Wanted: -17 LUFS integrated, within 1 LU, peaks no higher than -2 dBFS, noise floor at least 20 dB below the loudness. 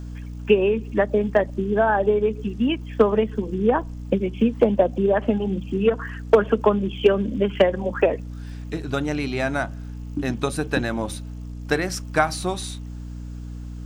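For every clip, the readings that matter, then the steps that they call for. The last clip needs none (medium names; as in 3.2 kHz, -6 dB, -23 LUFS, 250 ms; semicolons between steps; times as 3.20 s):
hum 60 Hz; highest harmonic 300 Hz; hum level -31 dBFS; loudness -22.5 LUFS; peak level -4.5 dBFS; loudness target -17.0 LUFS
-> de-hum 60 Hz, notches 5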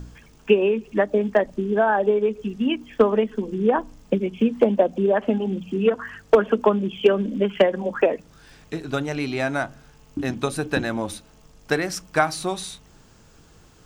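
hum not found; loudness -22.5 LUFS; peak level -5.0 dBFS; loudness target -17.0 LUFS
-> trim +5.5 dB; peak limiter -2 dBFS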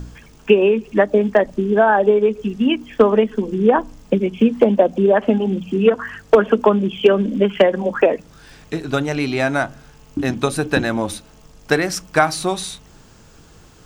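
loudness -17.5 LUFS; peak level -2.0 dBFS; noise floor -47 dBFS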